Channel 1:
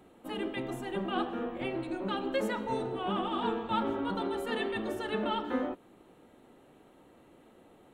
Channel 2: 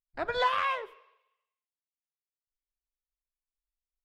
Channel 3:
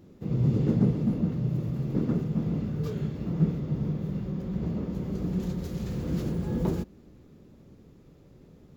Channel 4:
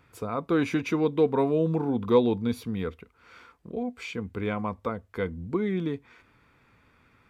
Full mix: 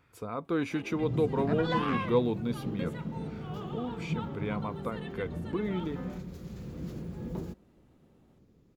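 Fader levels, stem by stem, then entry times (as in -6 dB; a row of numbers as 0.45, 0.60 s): -11.5, -5.0, -9.5, -5.5 dB; 0.45, 1.30, 0.70, 0.00 s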